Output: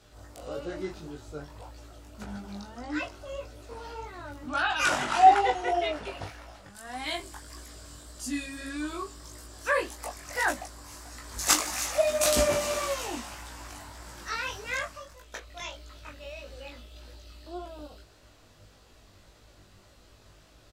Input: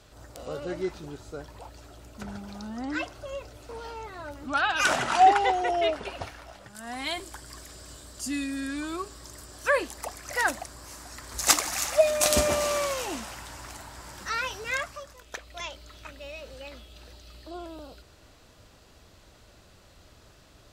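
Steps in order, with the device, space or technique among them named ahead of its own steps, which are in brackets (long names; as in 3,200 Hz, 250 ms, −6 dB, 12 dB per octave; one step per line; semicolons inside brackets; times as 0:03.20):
double-tracked vocal (double-tracking delay 20 ms −5 dB; chorus effect 1.7 Hz, delay 16 ms, depth 5.1 ms)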